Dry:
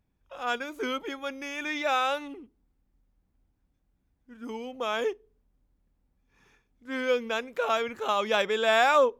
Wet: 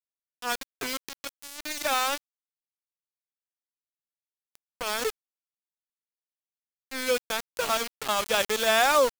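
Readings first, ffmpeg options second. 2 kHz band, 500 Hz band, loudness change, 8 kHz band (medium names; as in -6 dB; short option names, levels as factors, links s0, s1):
0.0 dB, -1.5 dB, +1.0 dB, +13.0 dB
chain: -af "aeval=exprs='val(0)*gte(abs(val(0)),0.0473)':c=same,adynamicequalizer=threshold=0.00891:dfrequency=3700:dqfactor=0.7:tfrequency=3700:tqfactor=0.7:attack=5:release=100:ratio=0.375:range=3:mode=boostabove:tftype=highshelf"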